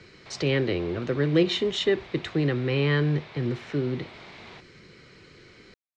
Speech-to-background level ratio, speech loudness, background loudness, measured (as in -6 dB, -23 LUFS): 19.5 dB, -26.0 LUFS, -45.5 LUFS